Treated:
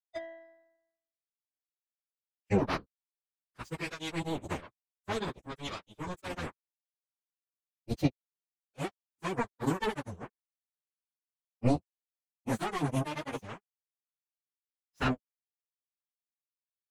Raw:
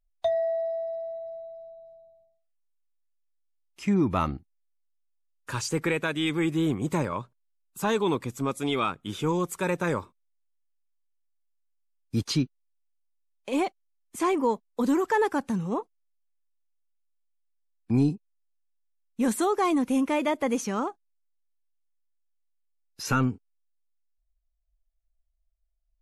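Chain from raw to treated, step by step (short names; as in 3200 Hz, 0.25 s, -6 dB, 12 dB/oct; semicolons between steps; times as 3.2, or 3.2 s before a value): octaver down 1 oct, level -2 dB; power-law curve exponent 3; plain phase-vocoder stretch 0.65×; gain +7 dB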